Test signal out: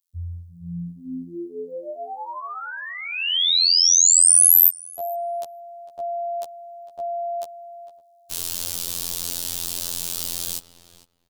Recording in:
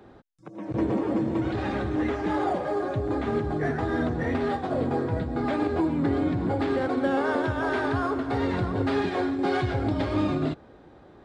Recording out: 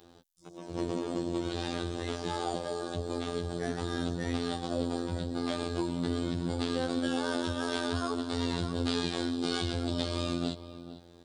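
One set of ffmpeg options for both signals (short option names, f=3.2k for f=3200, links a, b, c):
-filter_complex "[0:a]afftfilt=real='hypot(re,im)*cos(PI*b)':imag='0':win_size=2048:overlap=0.75,asplit=2[a][b];[b]adelay=453,lowpass=f=2.4k:p=1,volume=-14dB,asplit=2[c][d];[d]adelay=453,lowpass=f=2.4k:p=1,volume=0.15[e];[a][c][e]amix=inputs=3:normalize=0,aexciter=amount=7.8:drive=1.9:freq=3k,volume=-4dB"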